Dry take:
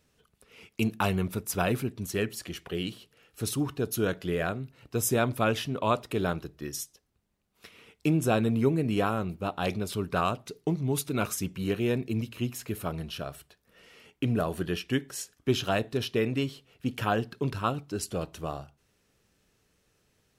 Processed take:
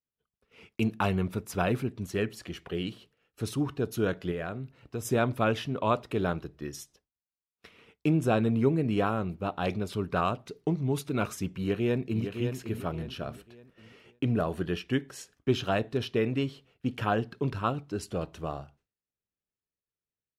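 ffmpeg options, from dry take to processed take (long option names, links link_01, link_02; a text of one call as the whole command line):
ffmpeg -i in.wav -filter_complex "[0:a]asettb=1/sr,asplit=3[link_01][link_02][link_03];[link_01]atrim=end=4.314[link_04];[link_02]atrim=start=4.31:end=5.05,asetpts=PTS-STARTPTS,afade=type=in:duration=0.004:curve=qsin,afade=type=out:start_time=0.736:duration=0.004:curve=qsin,acompressor=threshold=-33dB:ratio=2:attack=3.2:release=140:knee=1:detection=peak[link_05];[link_03]atrim=start=5.046[link_06];[link_04][link_05]acrossfade=duration=0.004:curve1=hsin:curve2=qsin[link_07];[link_07][link_06]acrossfade=duration=0.004:curve1=qsin:curve2=hsin,asplit=2[link_08][link_09];[link_09]afade=type=in:start_time=11.51:duration=0.01,afade=type=out:start_time=12.29:duration=0.01,aecho=0:1:560|1120|1680|2240:0.421697|0.147594|0.0516578|0.0180802[link_10];[link_08][link_10]amix=inputs=2:normalize=0,agate=range=-33dB:threshold=-52dB:ratio=3:detection=peak,lowpass=frequency=3000:poles=1" out.wav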